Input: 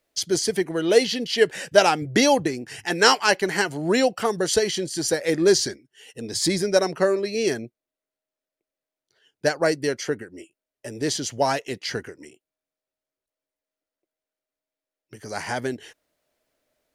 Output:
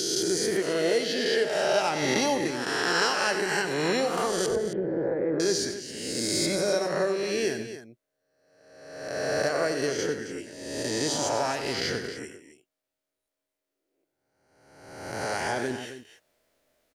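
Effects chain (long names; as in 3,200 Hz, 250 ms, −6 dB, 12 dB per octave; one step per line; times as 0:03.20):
peak hold with a rise ahead of every peak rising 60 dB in 1.17 s
0:04.46–0:05.40: low-pass filter 1,300 Hz 24 dB per octave
downward compressor 2.5 to 1, threshold −28 dBFS, peak gain reduction 13.5 dB
loudspeakers that aren't time-aligned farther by 32 metres −10 dB, 92 metres −12 dB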